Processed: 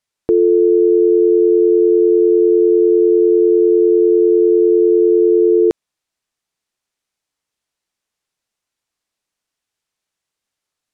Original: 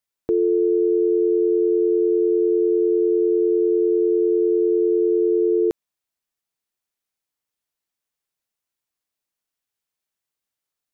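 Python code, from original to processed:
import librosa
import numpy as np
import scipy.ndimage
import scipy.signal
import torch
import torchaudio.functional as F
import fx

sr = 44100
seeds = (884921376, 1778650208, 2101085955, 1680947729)

y = scipy.signal.sosfilt(scipy.signal.butter(2, 9100.0, 'lowpass', fs=sr, output='sos'), x)
y = F.gain(torch.from_numpy(y), 7.0).numpy()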